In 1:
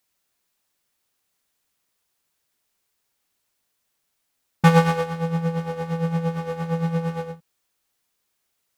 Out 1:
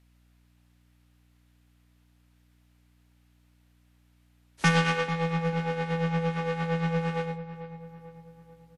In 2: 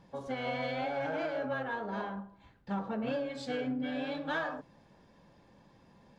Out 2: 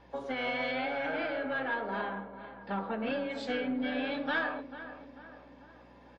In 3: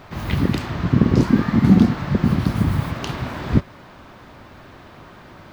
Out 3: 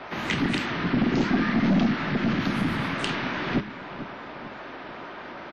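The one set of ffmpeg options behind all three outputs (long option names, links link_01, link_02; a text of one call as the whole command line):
ffmpeg -i in.wav -filter_complex "[0:a]acrossover=split=120|350|1300[link_01][link_02][link_03][link_04];[link_03]acompressor=threshold=-41dB:ratio=20[link_05];[link_01][link_02][link_05][link_04]amix=inputs=4:normalize=0,acrossover=split=220 3200:gain=0.0631 1 0.1[link_06][link_07][link_08];[link_06][link_07][link_08]amix=inputs=3:normalize=0,aeval=exprs='(tanh(14.1*val(0)+0.15)-tanh(0.15))/14.1':channel_layout=same,bandreject=frequency=104:width_type=h:width=4,bandreject=frequency=208:width_type=h:width=4,bandreject=frequency=312:width_type=h:width=4,bandreject=frequency=416:width_type=h:width=4,bandreject=frequency=520:width_type=h:width=4,acontrast=41,aeval=exprs='val(0)+0.000891*(sin(2*PI*60*n/s)+sin(2*PI*2*60*n/s)/2+sin(2*PI*3*60*n/s)/3+sin(2*PI*4*60*n/s)/4+sin(2*PI*5*60*n/s)/5)':channel_layout=same,highshelf=frequency=4000:gain=11,bandreject=frequency=1100:width=25,asplit=2[link_09][link_10];[link_10]adelay=443,lowpass=frequency=2000:poles=1,volume=-12.5dB,asplit=2[link_11][link_12];[link_12]adelay=443,lowpass=frequency=2000:poles=1,volume=0.52,asplit=2[link_13][link_14];[link_14]adelay=443,lowpass=frequency=2000:poles=1,volume=0.52,asplit=2[link_15][link_16];[link_16]adelay=443,lowpass=frequency=2000:poles=1,volume=0.52,asplit=2[link_17][link_18];[link_18]adelay=443,lowpass=frequency=2000:poles=1,volume=0.52[link_19];[link_09][link_11][link_13][link_15][link_17][link_19]amix=inputs=6:normalize=0" -ar 32000 -c:a wmav2 -b:a 64k out.wma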